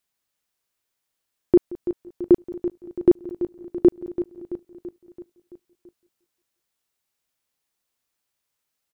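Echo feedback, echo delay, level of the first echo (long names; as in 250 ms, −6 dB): repeats not evenly spaced, 177 ms, −20.5 dB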